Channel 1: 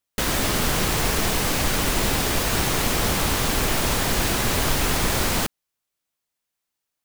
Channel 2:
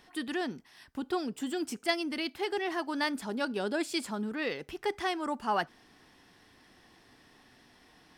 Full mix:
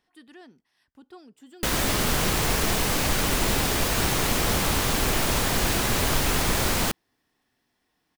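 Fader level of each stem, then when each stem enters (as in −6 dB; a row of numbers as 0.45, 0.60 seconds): −1.5, −15.0 decibels; 1.45, 0.00 seconds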